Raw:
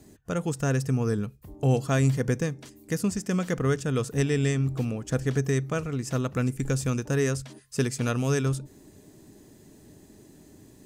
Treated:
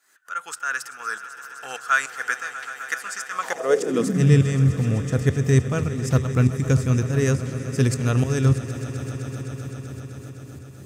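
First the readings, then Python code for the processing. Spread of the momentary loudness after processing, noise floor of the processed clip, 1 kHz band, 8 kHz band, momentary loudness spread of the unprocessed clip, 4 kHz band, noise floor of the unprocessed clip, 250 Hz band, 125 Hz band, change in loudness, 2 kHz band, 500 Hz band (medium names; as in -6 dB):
15 LU, -42 dBFS, +7.5 dB, +3.0 dB, 7 LU, +3.0 dB, -54 dBFS, +3.0 dB, +6.0 dB, +4.5 dB, +9.0 dB, +3.0 dB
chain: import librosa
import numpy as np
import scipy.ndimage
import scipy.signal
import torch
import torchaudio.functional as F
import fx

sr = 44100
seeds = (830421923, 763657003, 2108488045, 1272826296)

y = fx.tremolo_shape(x, sr, shape='saw_up', hz=3.4, depth_pct=85)
y = fx.echo_swell(y, sr, ms=128, loudest=5, wet_db=-16.5)
y = fx.filter_sweep_highpass(y, sr, from_hz=1400.0, to_hz=88.0, start_s=3.29, end_s=4.49, q=5.6)
y = y * 10.0 ** (6.0 / 20.0)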